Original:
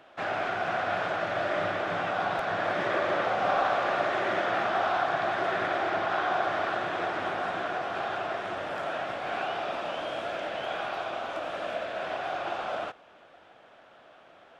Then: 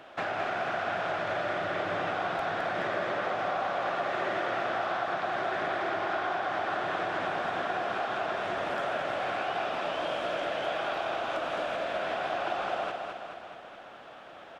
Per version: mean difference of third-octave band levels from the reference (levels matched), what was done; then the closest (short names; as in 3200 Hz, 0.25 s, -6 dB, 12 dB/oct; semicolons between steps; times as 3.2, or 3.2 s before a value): 3.0 dB: compressor, threshold -35 dBFS, peak gain reduction 12.5 dB; on a send: feedback echo 0.213 s, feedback 57%, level -5 dB; on the sum: gain +5 dB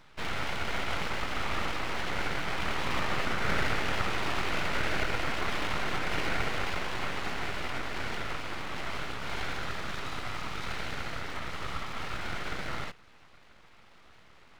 8.5 dB: full-wave rectifier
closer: first